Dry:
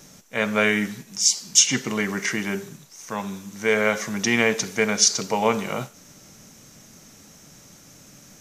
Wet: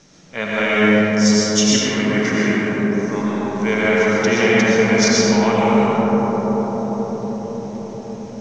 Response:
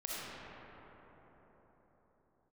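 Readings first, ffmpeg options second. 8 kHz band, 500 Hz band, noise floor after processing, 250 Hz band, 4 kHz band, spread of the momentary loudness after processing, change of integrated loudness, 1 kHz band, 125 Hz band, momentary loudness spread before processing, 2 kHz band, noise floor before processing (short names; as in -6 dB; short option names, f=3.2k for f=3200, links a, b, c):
-2.0 dB, +9.0 dB, -33 dBFS, +12.0 dB, +2.5 dB, 13 LU, +5.0 dB, +8.0 dB, +11.0 dB, 15 LU, +5.5 dB, -50 dBFS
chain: -filter_complex "[0:a]lowpass=f=5.9k:w=0.5412,lowpass=f=5.9k:w=1.3066[a];[1:a]atrim=start_sample=2205,asetrate=22491,aresample=44100[b];[a][b]afir=irnorm=-1:irlink=0"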